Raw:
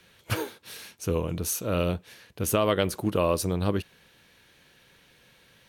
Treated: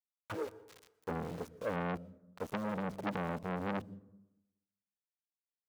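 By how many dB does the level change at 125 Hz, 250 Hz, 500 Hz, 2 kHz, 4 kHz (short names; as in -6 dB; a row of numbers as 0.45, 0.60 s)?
-13.0, -9.0, -12.5, -7.5, -18.5 dB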